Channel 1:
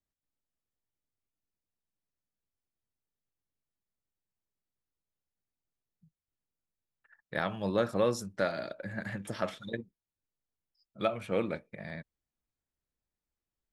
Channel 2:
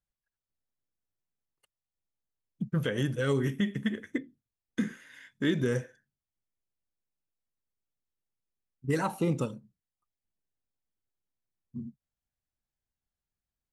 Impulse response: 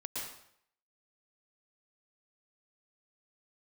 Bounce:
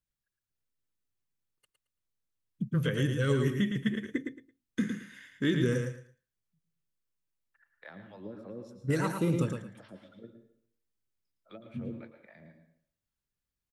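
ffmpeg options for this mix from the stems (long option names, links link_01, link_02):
-filter_complex "[0:a]acrossover=split=230 4100:gain=0.224 1 0.178[link_01][link_02][link_03];[link_01][link_02][link_03]amix=inputs=3:normalize=0,acrossover=split=320[link_04][link_05];[link_05]acompressor=threshold=-50dB:ratio=2[link_06];[link_04][link_06]amix=inputs=2:normalize=0,acrossover=split=540[link_07][link_08];[link_07]aeval=exprs='val(0)*(1-1/2+1/2*cos(2*PI*3.6*n/s))':channel_layout=same[link_09];[link_08]aeval=exprs='val(0)*(1-1/2-1/2*cos(2*PI*3.6*n/s))':channel_layout=same[link_10];[link_09][link_10]amix=inputs=2:normalize=0,adelay=500,volume=-5dB,asplit=3[link_11][link_12][link_13];[link_12]volume=-6dB[link_14];[link_13]volume=-9.5dB[link_15];[1:a]equalizer=frequency=750:width=2.8:gain=-10,volume=-0.5dB,asplit=2[link_16][link_17];[link_17]volume=-5.5dB[link_18];[2:a]atrim=start_sample=2205[link_19];[link_14][link_19]afir=irnorm=-1:irlink=0[link_20];[link_15][link_18]amix=inputs=2:normalize=0,aecho=0:1:111|222|333:1|0.21|0.0441[link_21];[link_11][link_16][link_20][link_21]amix=inputs=4:normalize=0,equalizer=frequency=110:width_type=o:width=0.73:gain=3.5"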